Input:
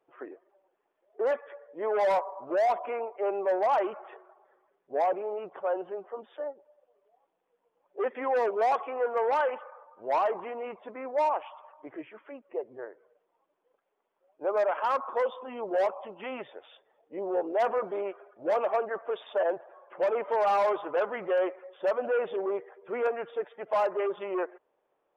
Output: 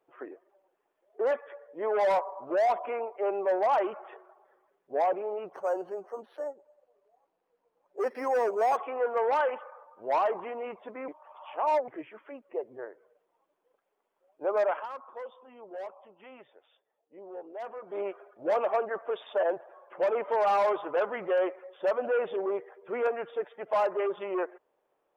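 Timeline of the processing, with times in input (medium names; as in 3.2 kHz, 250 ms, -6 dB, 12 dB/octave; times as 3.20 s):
5.53–8.77 s: decimation joined by straight lines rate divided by 6×
11.08–11.88 s: reverse
14.72–18.01 s: dip -13 dB, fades 0.15 s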